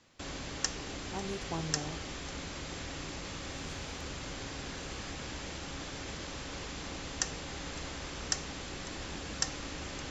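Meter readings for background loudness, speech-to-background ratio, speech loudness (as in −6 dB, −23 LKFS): −39.0 LKFS, −3.5 dB, −42.5 LKFS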